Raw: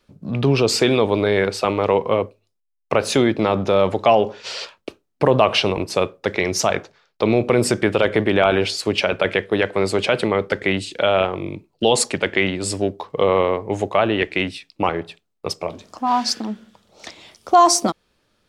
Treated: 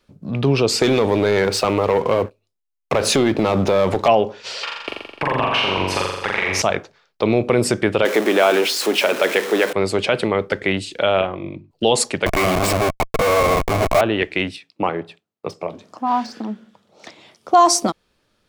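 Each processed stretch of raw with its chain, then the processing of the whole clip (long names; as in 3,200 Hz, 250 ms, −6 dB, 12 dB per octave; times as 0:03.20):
0:00.82–0:04.08: leveller curve on the samples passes 2 + downward compressor 3 to 1, threshold −14 dBFS
0:04.63–0:06.62: flat-topped bell 1,600 Hz +11 dB 2.3 octaves + downward compressor, threshold −18 dBFS + flutter between parallel walls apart 7.3 metres, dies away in 1.1 s
0:08.05–0:09.73: converter with a step at zero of −21 dBFS + high-pass filter 240 Hz 24 dB per octave + notch filter 4,600 Hz, Q 24
0:11.21–0:11.71: high-frequency loss of the air 150 metres + mains-hum notches 50/100/150/200/250/300/350 Hz + notch comb filter 440 Hz
0:12.26–0:14.01: comparator with hysteresis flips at −27.5 dBFS + hollow resonant body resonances 660/1,100/2,200 Hz, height 12 dB, ringing for 20 ms
0:14.56–0:17.54: high-pass filter 110 Hz 24 dB per octave + de-essing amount 65% + high-shelf EQ 3,200 Hz −7.5 dB
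whole clip: no processing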